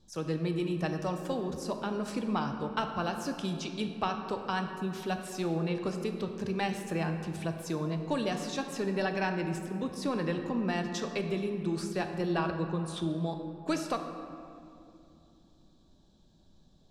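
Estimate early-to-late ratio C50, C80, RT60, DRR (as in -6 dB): 6.5 dB, 7.5 dB, 2.7 s, 5.0 dB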